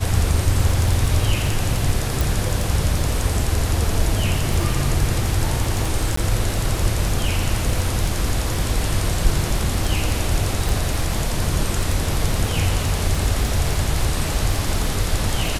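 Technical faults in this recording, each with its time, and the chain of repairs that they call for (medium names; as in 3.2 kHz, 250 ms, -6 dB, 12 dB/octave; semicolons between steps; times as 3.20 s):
crackle 30 per s -23 dBFS
2.21 s: pop
6.16–6.17 s: dropout 14 ms
10.69 s: pop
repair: de-click; interpolate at 6.16 s, 14 ms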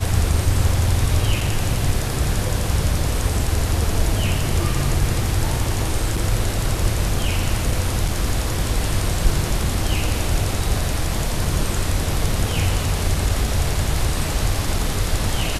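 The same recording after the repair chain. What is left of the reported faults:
nothing left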